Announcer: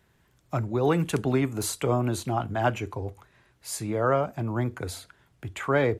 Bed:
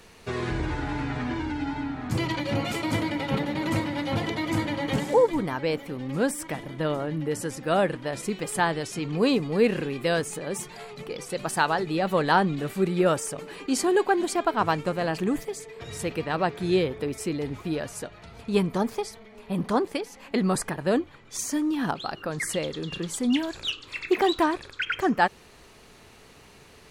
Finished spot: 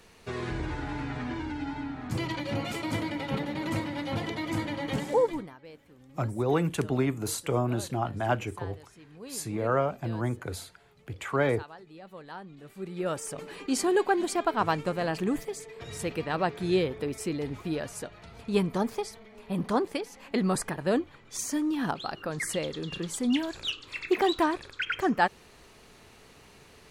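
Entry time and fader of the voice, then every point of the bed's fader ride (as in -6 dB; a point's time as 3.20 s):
5.65 s, -2.5 dB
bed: 5.32 s -4.5 dB
5.58 s -22 dB
12.44 s -22 dB
13.39 s -2.5 dB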